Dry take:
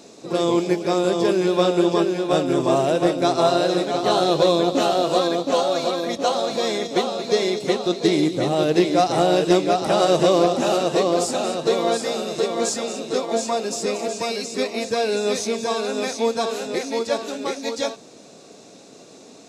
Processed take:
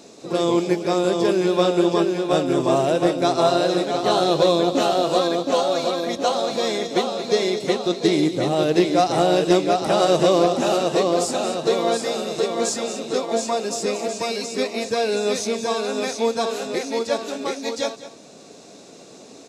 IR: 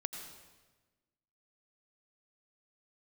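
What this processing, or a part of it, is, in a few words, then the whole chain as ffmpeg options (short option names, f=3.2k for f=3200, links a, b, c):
ducked delay: -filter_complex "[0:a]asplit=3[a][b][c];[b]adelay=204,volume=-4dB[d];[c]apad=whole_len=868498[e];[d][e]sidechaincompress=threshold=-34dB:ratio=6:attack=16:release=655[f];[a][f]amix=inputs=2:normalize=0"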